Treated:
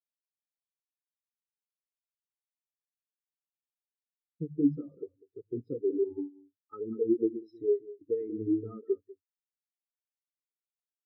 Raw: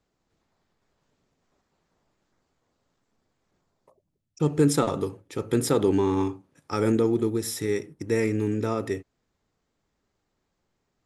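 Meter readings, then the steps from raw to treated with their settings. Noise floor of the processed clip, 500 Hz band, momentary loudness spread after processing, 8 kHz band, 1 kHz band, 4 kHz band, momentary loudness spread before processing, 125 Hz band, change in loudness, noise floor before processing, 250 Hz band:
below −85 dBFS, −6.0 dB, 14 LU, below −40 dB, −24.0 dB, below −40 dB, 11 LU, −16.0 dB, −7.0 dB, −78 dBFS, −6.5 dB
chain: mains-hum notches 50/100/150/200 Hz
downward compressor 20 to 1, threshold −27 dBFS, peak gain reduction 12.5 dB
low-pass filter sweep 4,200 Hz → 430 Hz, 0:07.83–0:10.22
single-tap delay 195 ms −5 dB
every bin expanded away from the loudest bin 4 to 1

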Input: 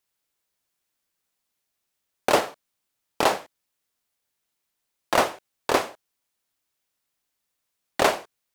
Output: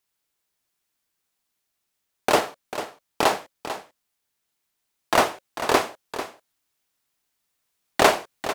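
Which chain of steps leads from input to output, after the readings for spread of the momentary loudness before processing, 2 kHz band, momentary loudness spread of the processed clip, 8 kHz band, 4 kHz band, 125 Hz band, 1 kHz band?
12 LU, +2.5 dB, 15 LU, +2.5 dB, +2.5 dB, +2.5 dB, +2.5 dB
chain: notch filter 540 Hz, Q 12
speech leveller within 4 dB 2 s
single-tap delay 445 ms −11.5 dB
level +2.5 dB

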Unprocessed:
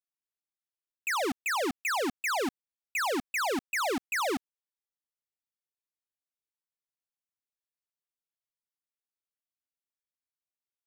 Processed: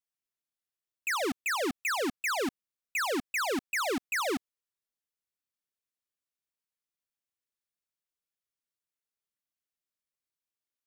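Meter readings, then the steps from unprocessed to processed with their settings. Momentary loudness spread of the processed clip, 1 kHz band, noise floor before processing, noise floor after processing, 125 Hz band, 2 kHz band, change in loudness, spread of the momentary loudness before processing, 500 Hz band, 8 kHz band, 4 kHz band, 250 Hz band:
4 LU, −2.5 dB, below −85 dBFS, below −85 dBFS, 0.0 dB, 0.0 dB, −0.5 dB, 4 LU, −0.5 dB, 0.0 dB, 0.0 dB, 0.0 dB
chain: parametric band 830 Hz −5.5 dB 0.45 octaves

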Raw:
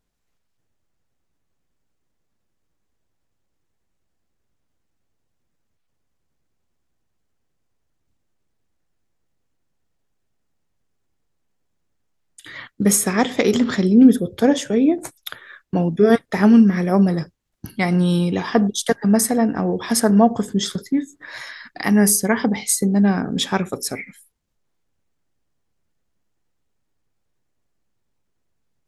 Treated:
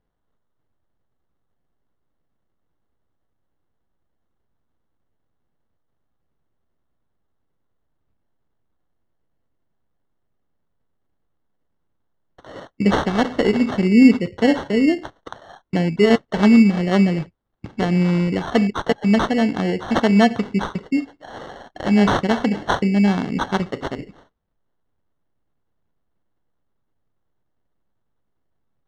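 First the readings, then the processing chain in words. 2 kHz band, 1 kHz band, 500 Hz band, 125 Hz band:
+1.5 dB, +1.0 dB, −0.5 dB, 0.0 dB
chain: decimation without filtering 18×
high-frequency loss of the air 150 metres

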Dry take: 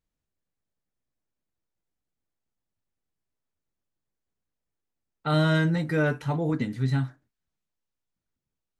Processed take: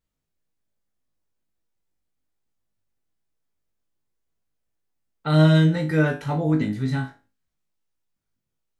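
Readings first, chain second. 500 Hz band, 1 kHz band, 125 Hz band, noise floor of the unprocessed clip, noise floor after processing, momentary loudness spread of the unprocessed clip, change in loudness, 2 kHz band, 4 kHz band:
+3.5 dB, +2.0 dB, +5.5 dB, below −85 dBFS, −80 dBFS, 6 LU, +5.5 dB, +1.5 dB, +3.5 dB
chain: tuned comb filter 52 Hz, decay 0.3 s, harmonics all, mix 90%
level +9 dB

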